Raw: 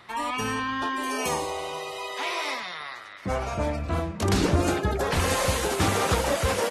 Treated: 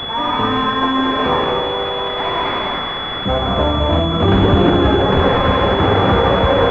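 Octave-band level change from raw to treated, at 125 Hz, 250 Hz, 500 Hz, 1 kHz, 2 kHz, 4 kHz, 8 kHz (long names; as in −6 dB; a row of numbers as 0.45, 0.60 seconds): +11.0 dB, +12.5 dB, +12.0 dB, +12.0 dB, +8.0 dB, +14.0 dB, below −15 dB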